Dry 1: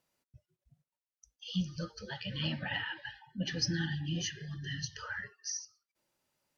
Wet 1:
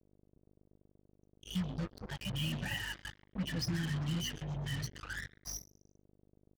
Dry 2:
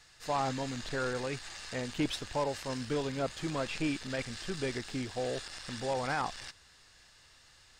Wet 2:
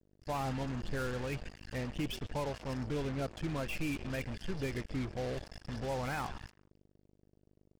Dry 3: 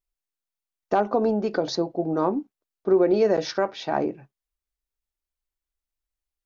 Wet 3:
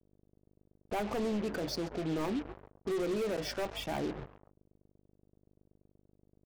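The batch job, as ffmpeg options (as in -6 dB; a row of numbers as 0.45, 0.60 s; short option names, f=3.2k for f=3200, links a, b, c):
-filter_complex "[0:a]asuperstop=centerf=3900:order=4:qfactor=6.4,afftdn=nr=21:nf=-41,aeval=exprs='val(0)+0.00224*(sin(2*PI*50*n/s)+sin(2*PI*2*50*n/s)/2+sin(2*PI*3*50*n/s)/3+sin(2*PI*4*50*n/s)/4+sin(2*PI*5*50*n/s)/5)':c=same,aeval=exprs='0.355*(cos(1*acos(clip(val(0)/0.355,-1,1)))-cos(1*PI/2))+0.00282*(cos(2*acos(clip(val(0)/0.355,-1,1)))-cos(2*PI/2))':c=same,asoftclip=type=tanh:threshold=-19.5dB,lowshelf=f=200:g=11.5,asplit=4[a][b][c][d];[b]adelay=132,afreqshift=79,volume=-19dB[e];[c]adelay=264,afreqshift=158,volume=-26.5dB[f];[d]adelay=396,afreqshift=237,volume=-34.1dB[g];[a][e][f][g]amix=inputs=4:normalize=0,adynamicequalizer=threshold=0.00251:dfrequency=2600:dqfactor=1.6:tfrequency=2600:tqfactor=1.6:attack=5:release=100:ratio=0.375:range=3.5:mode=boostabove:tftype=bell,alimiter=limit=-22dB:level=0:latency=1:release=121,acrusher=bits=5:mix=0:aa=0.5,volume=-5dB"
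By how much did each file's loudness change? -1.5, -3.0, -11.5 LU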